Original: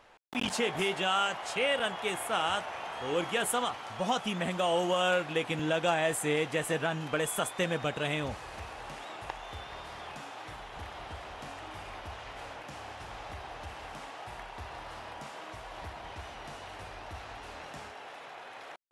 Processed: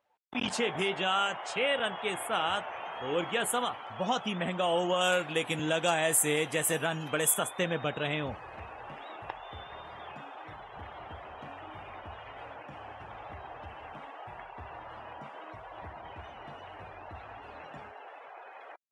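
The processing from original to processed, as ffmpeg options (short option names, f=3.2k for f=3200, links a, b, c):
-filter_complex "[0:a]asettb=1/sr,asplit=3[a][b][c];[a]atrim=end=5.014[d];[b]atrim=start=5.01:end=7.34,asetpts=PTS-STARTPTS,afade=t=in:d=0.004:c=qsin,afade=t=out:st=2.326:d=0.004:c=qsin,aemphasis=mode=production:type=50fm[e];[c]atrim=start=7.336[f];[d][e]acrossfade=d=0.004:c1=hsin:c2=qsin[g];[g][f]acrossfade=d=0.004:c1=qsin:c2=hsin,afftdn=nr=22:nf=-47,highpass=75"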